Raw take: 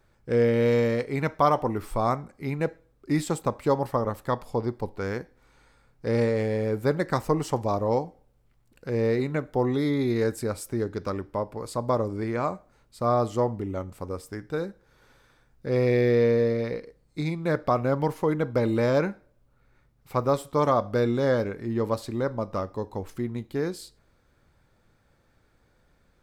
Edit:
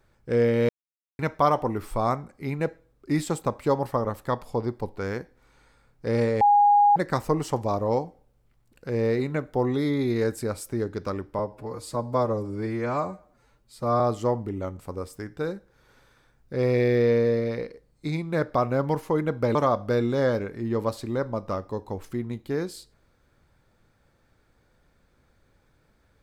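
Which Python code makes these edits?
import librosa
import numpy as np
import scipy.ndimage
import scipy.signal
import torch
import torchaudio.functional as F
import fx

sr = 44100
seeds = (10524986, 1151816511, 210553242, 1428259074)

y = fx.edit(x, sr, fx.silence(start_s=0.69, length_s=0.5),
    fx.bleep(start_s=6.41, length_s=0.55, hz=821.0, db=-14.0),
    fx.stretch_span(start_s=11.39, length_s=1.74, factor=1.5),
    fx.cut(start_s=18.68, length_s=1.92), tone=tone)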